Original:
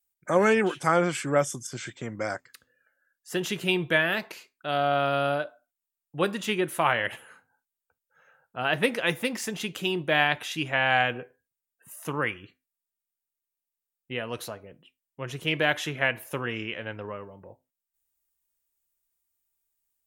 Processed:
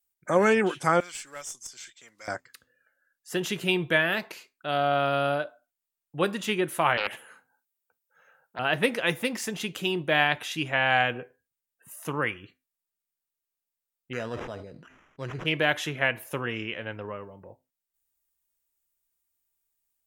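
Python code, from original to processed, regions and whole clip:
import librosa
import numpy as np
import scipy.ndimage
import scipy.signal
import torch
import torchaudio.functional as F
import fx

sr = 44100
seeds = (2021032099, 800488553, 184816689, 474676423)

y = fx.chain(x, sr, fx.block_float(bits=7),
    fx.bandpass_q(hz=6000.0, q=0.84),
    fx.tube_stage(drive_db=27.0, bias=0.35), at=(1.0, 2.28))
y = fx.chain(y, sr, fx.highpass(hz=170.0, slope=12),
    fx.high_shelf(hz=11000.0, db=6.5),
    fx.doppler_dist(depth_ms=0.37), at=(6.97, 8.59))
y = fx.chain(y, sr, fx.sample_hold(seeds[0], rate_hz=4400.0, jitter_pct=0),
    fx.spacing_loss(db_at_10k=21),
    fx.sustainer(db_per_s=48.0), at=(14.13, 15.46))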